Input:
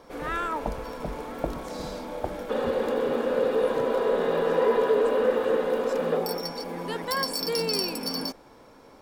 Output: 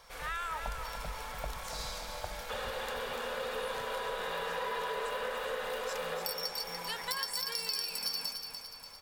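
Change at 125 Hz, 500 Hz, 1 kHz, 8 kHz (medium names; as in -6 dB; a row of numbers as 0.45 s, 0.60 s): -9.5 dB, -15.0 dB, -6.5 dB, no reading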